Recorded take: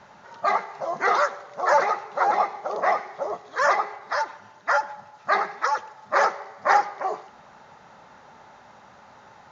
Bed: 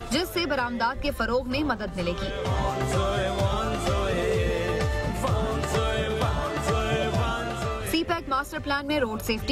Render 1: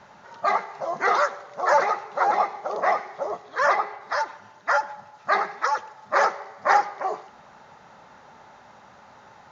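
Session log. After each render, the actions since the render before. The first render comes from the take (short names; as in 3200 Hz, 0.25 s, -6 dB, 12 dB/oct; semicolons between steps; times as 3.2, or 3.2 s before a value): 3.45–4 LPF 5500 Hz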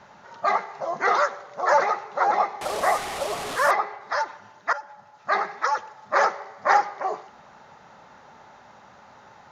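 2.61–3.71 delta modulation 64 kbps, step -25.5 dBFS; 4.73–5.71 fade in equal-power, from -16 dB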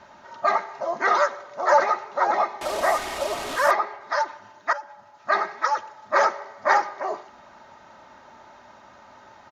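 bell 9500 Hz -3.5 dB 0.4 oct; comb 3.2 ms, depth 48%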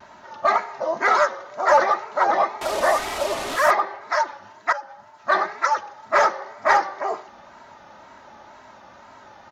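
vibrato 2 Hz 85 cents; in parallel at -9 dB: overloaded stage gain 16.5 dB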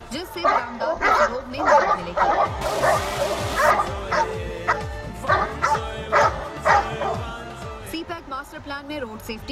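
add bed -5 dB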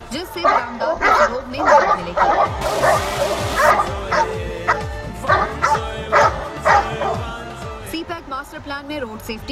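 gain +4 dB; limiter -1 dBFS, peak gain reduction 1 dB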